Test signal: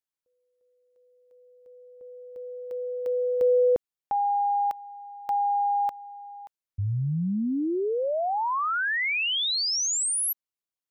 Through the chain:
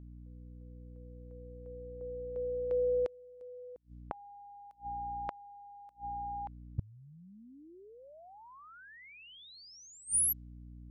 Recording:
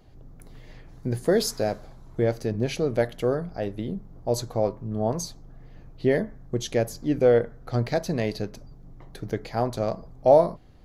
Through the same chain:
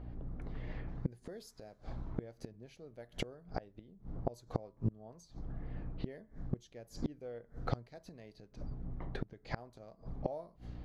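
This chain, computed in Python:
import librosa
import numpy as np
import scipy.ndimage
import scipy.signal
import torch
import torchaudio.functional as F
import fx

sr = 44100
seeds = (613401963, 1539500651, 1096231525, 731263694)

y = fx.env_lowpass(x, sr, base_hz=1800.0, full_db=-22.0)
y = fx.add_hum(y, sr, base_hz=60, snr_db=24)
y = fx.gate_flip(y, sr, shuts_db=-24.0, range_db=-30)
y = F.gain(torch.from_numpy(y), 2.5).numpy()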